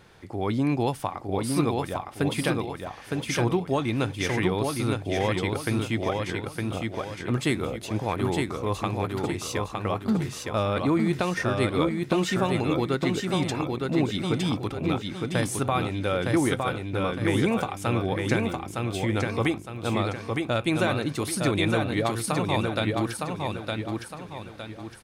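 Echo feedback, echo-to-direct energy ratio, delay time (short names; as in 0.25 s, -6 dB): 39%, -3.0 dB, 0.911 s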